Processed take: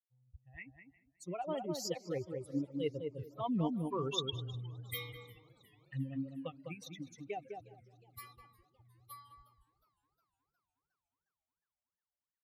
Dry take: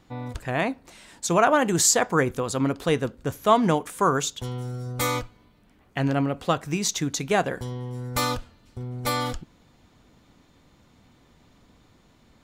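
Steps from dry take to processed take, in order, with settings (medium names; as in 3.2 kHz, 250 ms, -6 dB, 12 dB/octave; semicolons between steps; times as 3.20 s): expander on every frequency bin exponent 3; Doppler pass-by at 3.83 s, 9 m/s, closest 3.2 m; high-pass 67 Hz; reverse; compression 16:1, threshold -39 dBFS, peak gain reduction 20.5 dB; reverse; touch-sensitive phaser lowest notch 300 Hz, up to 1.6 kHz, full sweep at -45.5 dBFS; on a send: filtered feedback delay 204 ms, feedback 21%, low-pass 1.1 kHz, level -4 dB; on the sum: modulated delay 360 ms, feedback 64%, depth 107 cents, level -23 dB; trim +8.5 dB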